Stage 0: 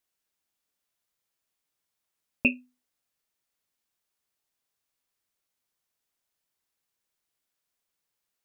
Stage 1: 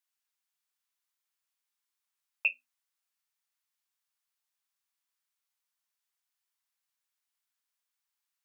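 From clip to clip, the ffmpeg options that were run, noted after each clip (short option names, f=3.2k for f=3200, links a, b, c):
-af "highpass=f=860:w=0.5412,highpass=f=860:w=1.3066,volume=-3.5dB"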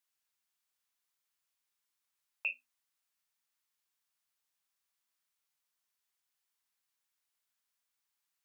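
-af "alimiter=level_in=2dB:limit=-24dB:level=0:latency=1:release=15,volume=-2dB,volume=1dB"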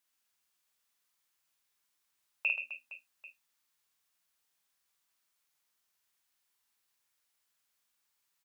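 -af "aecho=1:1:50|130|258|462.8|790.5:0.631|0.398|0.251|0.158|0.1,volume=3.5dB"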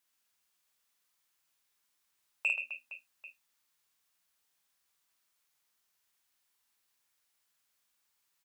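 -af "asoftclip=type=tanh:threshold=-21dB,volume=1.5dB"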